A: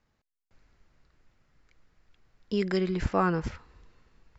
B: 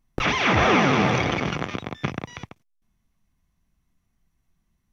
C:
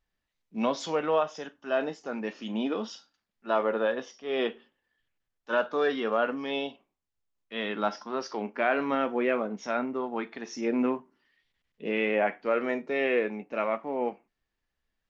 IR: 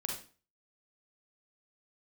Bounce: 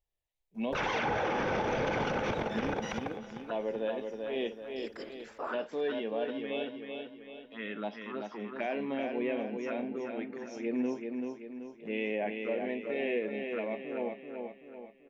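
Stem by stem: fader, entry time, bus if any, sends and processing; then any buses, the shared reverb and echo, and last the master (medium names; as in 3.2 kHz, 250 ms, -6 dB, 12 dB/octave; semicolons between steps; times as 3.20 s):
-12.0 dB, 2.25 s, bus A, no send, no echo send, inverse Chebyshev high-pass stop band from 200 Hz, stop band 40 dB
0.0 dB, 0.55 s, bus A, send -14.5 dB, echo send -19.5 dB, small resonant body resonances 510/830/1500 Hz, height 15 dB
-4.5 dB, 0.00 s, no bus, no send, echo send -5 dB, peaking EQ 5.1 kHz -7 dB 0.71 oct; touch-sensitive phaser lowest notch 240 Hz, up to 1.3 kHz, full sweep at -26.5 dBFS
bus A: 0.0 dB, whisper effect; compression, threshold -24 dBFS, peak gain reduction 15.5 dB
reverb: on, RT60 0.40 s, pre-delay 37 ms
echo: feedback delay 384 ms, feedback 46%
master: peak limiter -23 dBFS, peak gain reduction 12 dB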